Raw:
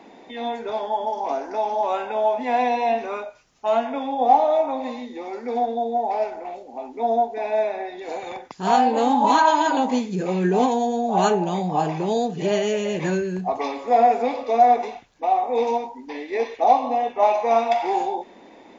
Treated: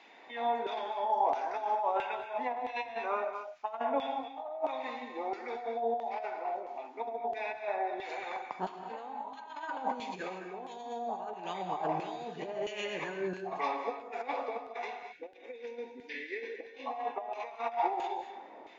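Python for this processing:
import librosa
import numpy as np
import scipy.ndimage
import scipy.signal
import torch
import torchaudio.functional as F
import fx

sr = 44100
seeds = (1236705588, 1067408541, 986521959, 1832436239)

y = fx.over_compress(x, sr, threshold_db=-25.0, ratio=-0.5)
y = fx.filter_lfo_bandpass(y, sr, shape='saw_down', hz=1.5, low_hz=640.0, high_hz=3000.0, q=1.1)
y = fx.rev_gated(y, sr, seeds[0], gate_ms=260, shape='rising', drr_db=7.5)
y = fx.spec_box(y, sr, start_s=15.12, length_s=1.74, low_hz=560.0, high_hz=1400.0, gain_db=-22)
y = y * 10.0 ** (-4.5 / 20.0)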